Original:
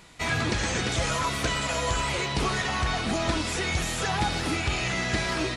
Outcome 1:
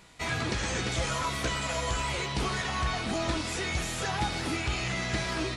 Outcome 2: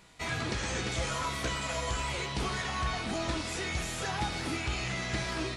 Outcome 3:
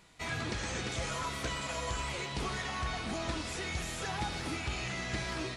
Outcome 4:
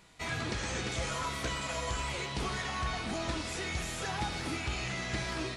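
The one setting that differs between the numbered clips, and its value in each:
feedback comb, decay: 0.17 s, 0.43 s, 2.2 s, 1 s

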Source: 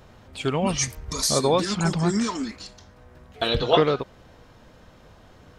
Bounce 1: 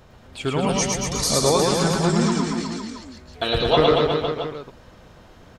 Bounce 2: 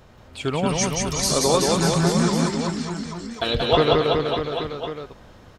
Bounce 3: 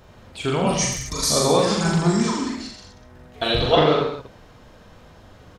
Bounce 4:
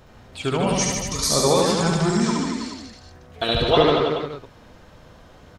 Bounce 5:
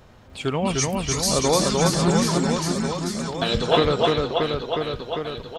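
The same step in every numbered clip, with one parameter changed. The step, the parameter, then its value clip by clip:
reverse bouncing-ball echo, first gap: 110 ms, 180 ms, 40 ms, 70 ms, 300 ms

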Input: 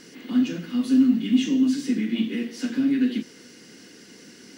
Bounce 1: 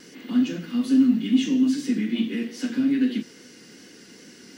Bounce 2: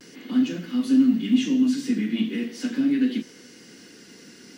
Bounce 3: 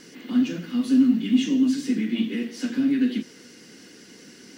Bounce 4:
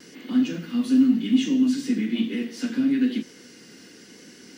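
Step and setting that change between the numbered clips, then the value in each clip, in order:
vibrato, rate: 2.4 Hz, 0.41 Hz, 10 Hz, 1 Hz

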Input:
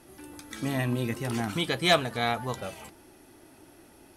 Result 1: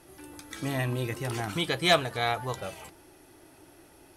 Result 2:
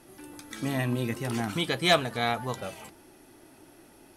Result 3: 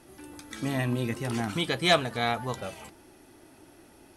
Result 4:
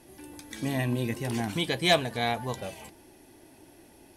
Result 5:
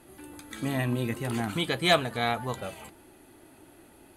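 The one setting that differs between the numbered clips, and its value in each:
peaking EQ, frequency: 230 Hz, 74 Hz, 14 kHz, 1.3 kHz, 5.5 kHz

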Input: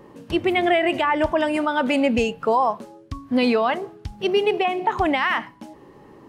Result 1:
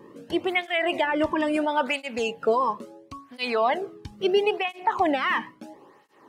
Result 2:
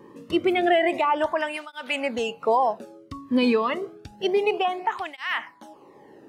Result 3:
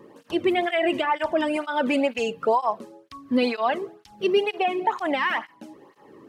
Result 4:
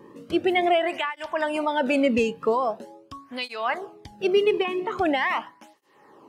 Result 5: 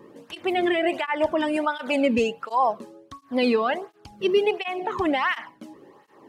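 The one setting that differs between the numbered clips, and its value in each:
cancelling through-zero flanger, nulls at: 0.74 Hz, 0.29 Hz, 2.1 Hz, 0.43 Hz, 1.4 Hz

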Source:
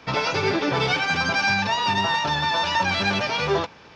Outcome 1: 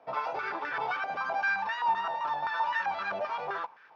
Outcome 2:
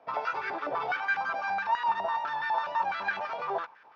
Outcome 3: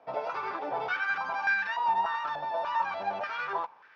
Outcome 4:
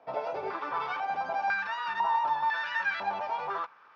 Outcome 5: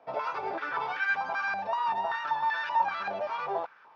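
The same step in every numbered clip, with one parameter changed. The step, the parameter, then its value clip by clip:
step-sequenced band-pass, rate: 7.7 Hz, 12 Hz, 3.4 Hz, 2 Hz, 5.2 Hz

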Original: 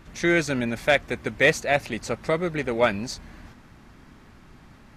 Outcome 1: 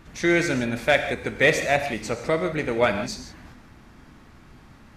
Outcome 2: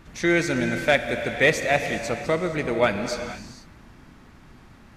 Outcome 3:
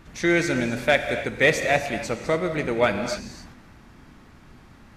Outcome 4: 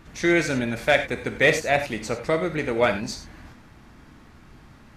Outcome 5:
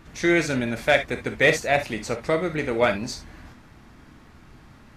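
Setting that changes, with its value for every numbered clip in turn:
gated-style reverb, gate: 190 ms, 510 ms, 320 ms, 120 ms, 90 ms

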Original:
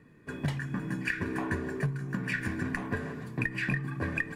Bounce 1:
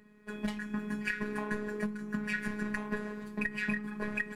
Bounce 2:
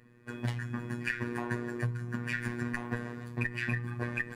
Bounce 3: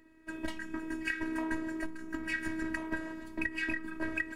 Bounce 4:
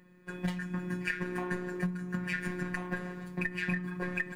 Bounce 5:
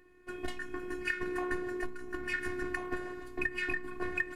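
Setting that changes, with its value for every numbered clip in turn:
robot voice, frequency: 210 Hz, 120 Hz, 320 Hz, 180 Hz, 360 Hz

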